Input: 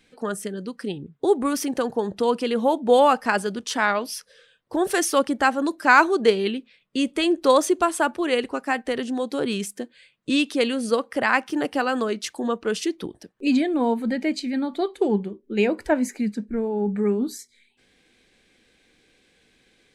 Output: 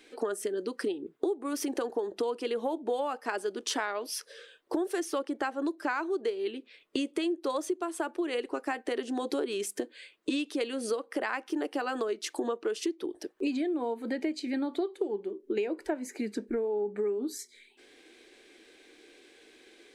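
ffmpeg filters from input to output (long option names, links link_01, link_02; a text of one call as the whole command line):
ffmpeg -i in.wav -filter_complex "[0:a]asettb=1/sr,asplit=3[link_01][link_02][link_03];[link_01]atrim=end=5.004[link_04];[link_02]atrim=start=5:end=6.11,asetpts=PTS-STARTPTS,afade=type=in:duration=0.004:curve=qsin,afade=type=out:start_time=1.106:duration=0.004:curve=qsin,highshelf=frequency=6700:gain=-5.5[link_05];[link_03]atrim=start=6.106[link_06];[link_04][link_05]acrossfade=duration=0.004:curve1=hsin:curve2=qsin[link_07];[link_07][link_06]acrossfade=duration=0.004:curve1=qsin:curve2=hsin,lowshelf=frequency=230:width_type=q:width=3:gain=-14,bandreject=frequency=510:width=17,acompressor=threshold=-32dB:ratio=10,volume=3.5dB" out.wav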